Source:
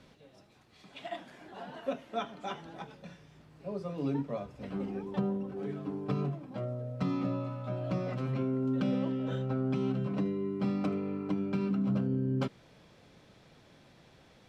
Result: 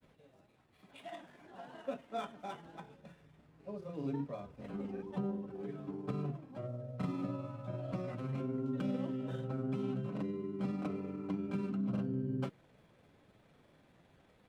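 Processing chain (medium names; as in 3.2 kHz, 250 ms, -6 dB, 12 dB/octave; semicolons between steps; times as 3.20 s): median filter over 9 samples; granulator 100 ms, spray 23 ms, pitch spread up and down by 0 st; trim -4.5 dB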